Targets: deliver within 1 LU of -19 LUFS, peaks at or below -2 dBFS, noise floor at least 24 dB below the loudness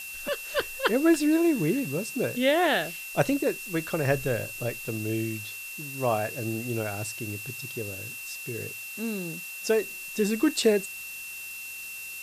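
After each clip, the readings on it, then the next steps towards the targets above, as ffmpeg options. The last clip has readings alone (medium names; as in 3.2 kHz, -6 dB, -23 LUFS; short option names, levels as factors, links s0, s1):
steady tone 2.7 kHz; tone level -38 dBFS; noise floor -39 dBFS; noise floor target -52 dBFS; loudness -28.0 LUFS; peak level -9.5 dBFS; loudness target -19.0 LUFS
-> -af "bandreject=f=2700:w=30"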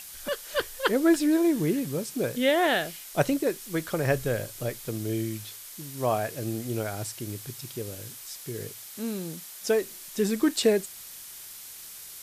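steady tone not found; noise floor -44 dBFS; noise floor target -52 dBFS
-> -af "afftdn=nr=8:nf=-44"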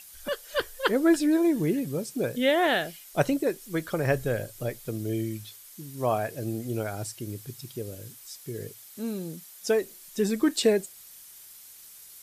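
noise floor -49 dBFS; noise floor target -52 dBFS
-> -af "afftdn=nr=6:nf=-49"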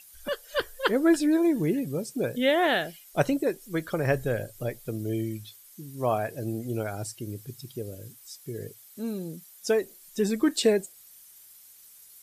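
noise floor -53 dBFS; loudness -28.0 LUFS; peak level -10.0 dBFS; loudness target -19.0 LUFS
-> -af "volume=2.82,alimiter=limit=0.794:level=0:latency=1"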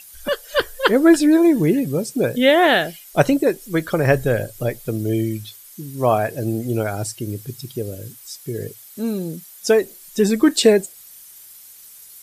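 loudness -19.0 LUFS; peak level -2.0 dBFS; noise floor -44 dBFS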